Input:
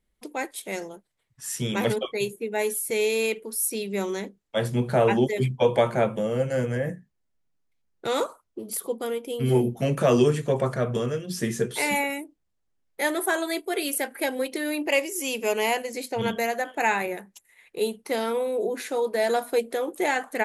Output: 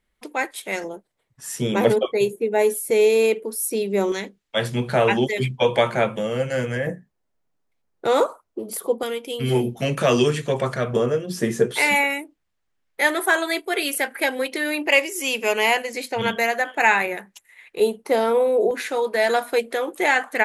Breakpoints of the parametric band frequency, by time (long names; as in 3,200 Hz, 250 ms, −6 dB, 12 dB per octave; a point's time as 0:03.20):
parametric band +8.5 dB 2.7 octaves
1,600 Hz
from 0:00.84 500 Hz
from 0:04.12 2,800 Hz
from 0:06.87 670 Hz
from 0:09.03 3,200 Hz
from 0:10.93 640 Hz
from 0:11.72 1,900 Hz
from 0:17.80 640 Hz
from 0:18.71 1,900 Hz